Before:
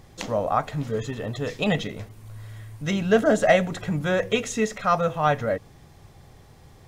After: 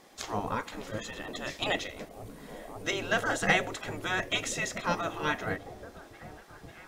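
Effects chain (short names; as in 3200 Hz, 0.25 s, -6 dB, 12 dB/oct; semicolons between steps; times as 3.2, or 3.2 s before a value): delay with a stepping band-pass 0.543 s, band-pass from 160 Hz, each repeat 0.7 oct, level -9 dB; spectral gate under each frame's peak -10 dB weak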